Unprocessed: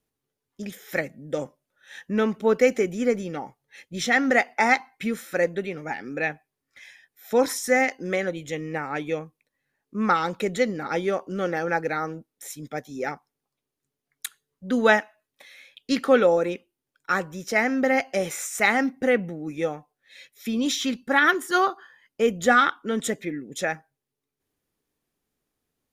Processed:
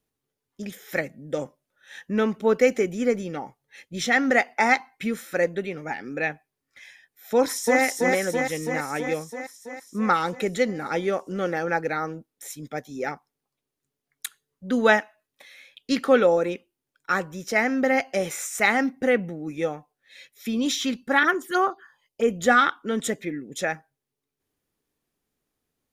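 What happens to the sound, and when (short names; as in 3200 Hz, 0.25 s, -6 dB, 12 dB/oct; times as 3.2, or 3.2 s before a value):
7.34–7.81 echo throw 0.33 s, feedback 70%, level -2.5 dB
21.23–22.3 envelope phaser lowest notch 190 Hz, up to 4200 Hz, full sweep at -17 dBFS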